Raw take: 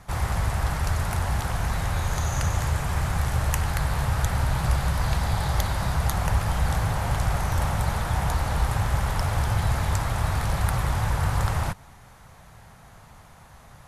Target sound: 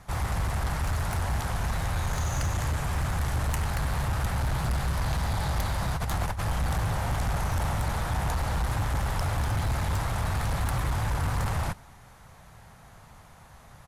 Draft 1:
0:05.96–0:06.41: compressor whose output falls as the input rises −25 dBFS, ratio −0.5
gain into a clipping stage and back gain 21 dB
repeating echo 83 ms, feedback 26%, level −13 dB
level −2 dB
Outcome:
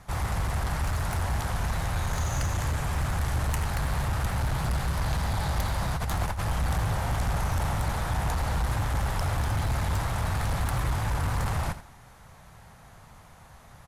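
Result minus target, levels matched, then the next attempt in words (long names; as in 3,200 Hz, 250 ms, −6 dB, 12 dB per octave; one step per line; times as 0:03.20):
echo-to-direct +11.5 dB
0:05.96–0:06.41: compressor whose output falls as the input rises −25 dBFS, ratio −0.5
gain into a clipping stage and back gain 21 dB
repeating echo 83 ms, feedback 26%, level −24.5 dB
level −2 dB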